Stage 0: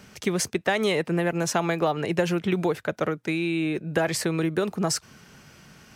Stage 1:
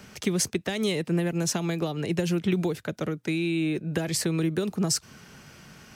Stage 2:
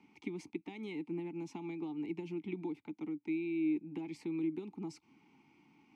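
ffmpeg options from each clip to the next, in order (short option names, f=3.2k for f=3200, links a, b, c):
-filter_complex "[0:a]acrossover=split=360|3000[a][b][c];[b]acompressor=threshold=-37dB:ratio=6[d];[a][d][c]amix=inputs=3:normalize=0,volume=1.5dB"
-filter_complex "[0:a]asplit=3[a][b][c];[a]bandpass=f=300:t=q:w=8,volume=0dB[d];[b]bandpass=f=870:t=q:w=8,volume=-6dB[e];[c]bandpass=f=2.24k:t=q:w=8,volume=-9dB[f];[d][e][f]amix=inputs=3:normalize=0,volume=-2dB"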